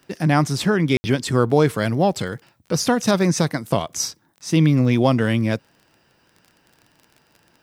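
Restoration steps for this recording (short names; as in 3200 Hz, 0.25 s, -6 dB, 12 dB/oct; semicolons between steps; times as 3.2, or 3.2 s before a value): de-click; room tone fill 0.97–1.04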